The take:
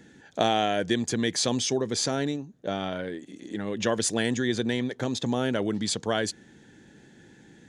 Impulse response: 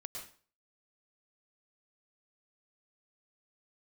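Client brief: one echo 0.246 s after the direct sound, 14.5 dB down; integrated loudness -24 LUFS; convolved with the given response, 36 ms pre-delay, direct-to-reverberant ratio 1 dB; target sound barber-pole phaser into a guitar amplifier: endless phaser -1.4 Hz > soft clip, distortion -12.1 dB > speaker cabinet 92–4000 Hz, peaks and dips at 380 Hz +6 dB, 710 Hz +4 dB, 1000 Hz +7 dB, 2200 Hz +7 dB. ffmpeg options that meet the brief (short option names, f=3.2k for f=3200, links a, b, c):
-filter_complex "[0:a]aecho=1:1:246:0.188,asplit=2[a][b];[1:a]atrim=start_sample=2205,adelay=36[c];[b][c]afir=irnorm=-1:irlink=0,volume=1.5dB[d];[a][d]amix=inputs=2:normalize=0,asplit=2[e][f];[f]afreqshift=-1.4[g];[e][g]amix=inputs=2:normalize=1,asoftclip=threshold=-23dB,highpass=92,equalizer=f=380:t=q:w=4:g=6,equalizer=f=710:t=q:w=4:g=4,equalizer=f=1k:t=q:w=4:g=7,equalizer=f=2.2k:t=q:w=4:g=7,lowpass=f=4k:w=0.5412,lowpass=f=4k:w=1.3066,volume=5dB"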